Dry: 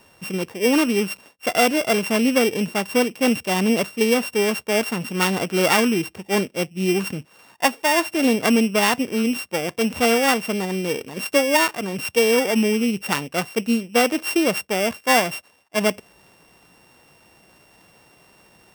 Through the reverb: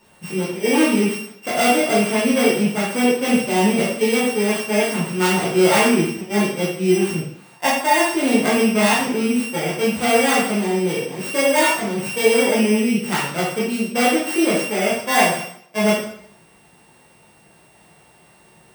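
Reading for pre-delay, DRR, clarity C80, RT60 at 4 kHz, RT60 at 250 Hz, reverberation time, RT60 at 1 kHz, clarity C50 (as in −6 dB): 7 ms, −7.5 dB, 6.5 dB, 0.60 s, 0.65 s, 0.65 s, 0.65 s, 2.0 dB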